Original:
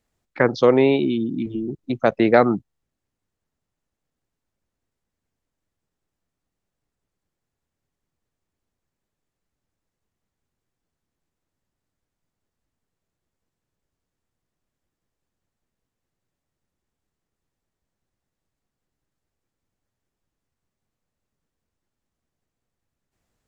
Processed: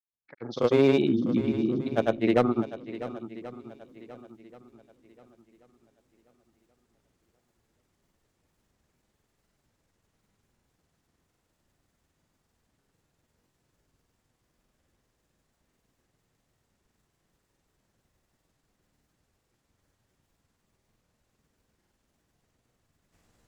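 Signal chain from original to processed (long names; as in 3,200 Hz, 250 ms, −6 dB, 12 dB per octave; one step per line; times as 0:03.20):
fade in at the beginning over 2.94 s
automatic gain control gain up to 16.5 dB
asymmetric clip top −10 dBFS
granular cloud, pitch spread up and down by 0 semitones
on a send: feedback echo with a long and a short gap by turns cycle 1,082 ms, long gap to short 1.5 to 1, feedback 31%, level −14 dB
on the sum: level −5.5 dB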